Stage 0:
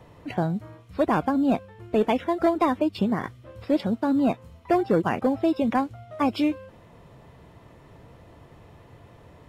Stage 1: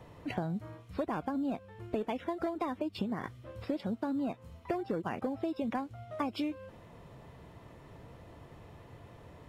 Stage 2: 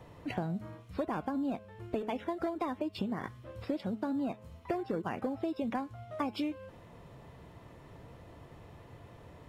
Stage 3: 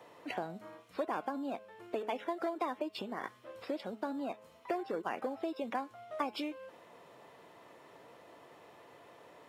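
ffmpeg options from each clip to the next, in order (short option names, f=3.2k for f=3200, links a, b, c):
-af "acompressor=threshold=-28dB:ratio=12,volume=-2.5dB"
-af "bandreject=f=212.4:t=h:w=4,bandreject=f=424.8:t=h:w=4,bandreject=f=637.2:t=h:w=4,bandreject=f=849.6:t=h:w=4,bandreject=f=1.062k:t=h:w=4,bandreject=f=1.2744k:t=h:w=4,bandreject=f=1.4868k:t=h:w=4,bandreject=f=1.6992k:t=h:w=4,bandreject=f=1.9116k:t=h:w=4,bandreject=f=2.124k:t=h:w=4,bandreject=f=2.3364k:t=h:w=4,bandreject=f=2.5488k:t=h:w=4,bandreject=f=2.7612k:t=h:w=4,bandreject=f=2.9736k:t=h:w=4,bandreject=f=3.186k:t=h:w=4"
-af "highpass=400,volume=1dB"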